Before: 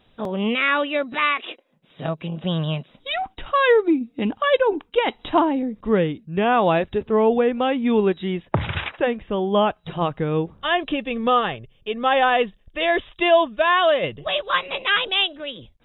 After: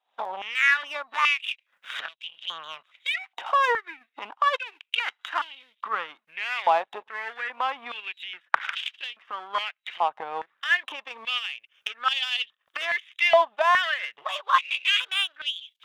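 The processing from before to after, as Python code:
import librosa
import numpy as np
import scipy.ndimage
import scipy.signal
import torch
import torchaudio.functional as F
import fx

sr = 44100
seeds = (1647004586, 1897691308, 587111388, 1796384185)

y = fx.recorder_agc(x, sr, target_db=-16.0, rise_db_per_s=60.0, max_gain_db=30)
y = fx.power_curve(y, sr, exponent=1.4)
y = fx.filter_held_highpass(y, sr, hz=2.4, low_hz=830.0, high_hz=3100.0)
y = y * 10.0 ** (-1.5 / 20.0)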